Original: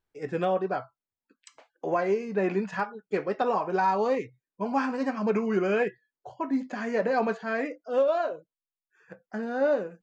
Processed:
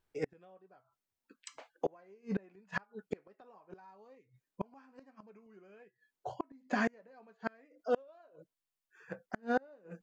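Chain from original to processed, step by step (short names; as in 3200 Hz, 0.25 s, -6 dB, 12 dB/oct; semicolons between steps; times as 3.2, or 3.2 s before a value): flipped gate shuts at -23 dBFS, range -35 dB; gain +2.5 dB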